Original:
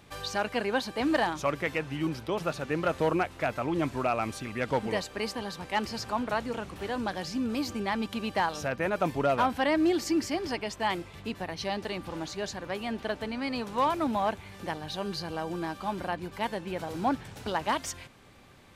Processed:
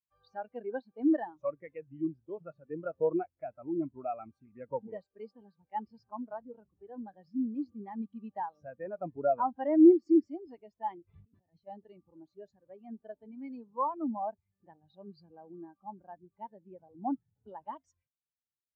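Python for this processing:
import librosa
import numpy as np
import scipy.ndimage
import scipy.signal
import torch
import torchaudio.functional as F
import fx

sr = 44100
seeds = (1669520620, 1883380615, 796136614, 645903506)

y = fx.over_compress(x, sr, threshold_db=-44.0, ratio=-1.0, at=(11.07, 11.66), fade=0.02)
y = fx.spectral_expand(y, sr, expansion=2.5)
y = F.gain(torch.from_numpy(y), 5.0).numpy()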